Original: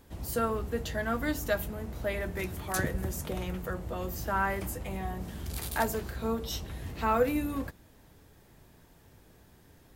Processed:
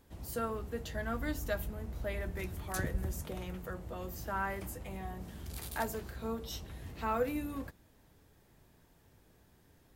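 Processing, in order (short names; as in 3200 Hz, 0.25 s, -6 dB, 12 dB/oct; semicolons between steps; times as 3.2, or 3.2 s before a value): 0.95–3.23 low shelf 65 Hz +11 dB; gain -6.5 dB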